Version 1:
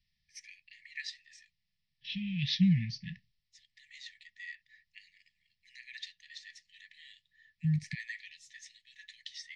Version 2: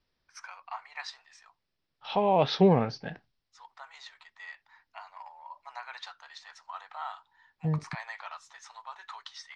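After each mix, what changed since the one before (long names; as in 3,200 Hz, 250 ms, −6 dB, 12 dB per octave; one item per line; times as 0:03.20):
master: remove linear-phase brick-wall band-stop 220–1,700 Hz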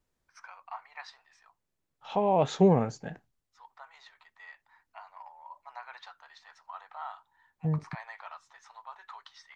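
second voice: remove Butterworth low-pass 5,500 Hz 96 dB per octave
master: add high-shelf EQ 2,200 Hz −11 dB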